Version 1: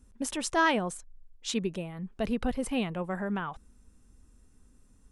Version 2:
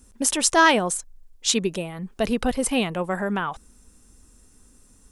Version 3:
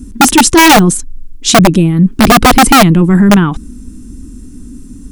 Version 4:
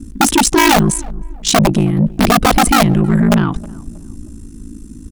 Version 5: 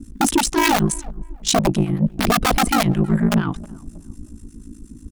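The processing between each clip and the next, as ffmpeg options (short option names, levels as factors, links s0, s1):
-af "bass=f=250:g=-5,treble=f=4000:g=7,volume=2.66"
-af "lowshelf=f=410:t=q:w=3:g=13,aeval=exprs='(mod(1.5*val(0)+1,2)-1)/1.5':c=same,apsyclip=4.22,volume=0.841"
-filter_complex "[0:a]aeval=exprs='val(0)*sin(2*PI*27*n/s)':c=same,asoftclip=type=tanh:threshold=0.531,asplit=2[s0][s1];[s1]adelay=317,lowpass=f=880:p=1,volume=0.1,asplit=2[s2][s3];[s3]adelay=317,lowpass=f=880:p=1,volume=0.41,asplit=2[s4][s5];[s5]adelay=317,lowpass=f=880:p=1,volume=0.41[s6];[s0][s2][s4][s6]amix=inputs=4:normalize=0"
-filter_complex "[0:a]acrossover=split=1000[s0][s1];[s0]aeval=exprs='val(0)*(1-0.7/2+0.7/2*cos(2*PI*8.3*n/s))':c=same[s2];[s1]aeval=exprs='val(0)*(1-0.7/2-0.7/2*cos(2*PI*8.3*n/s))':c=same[s3];[s2][s3]amix=inputs=2:normalize=0,volume=0.708"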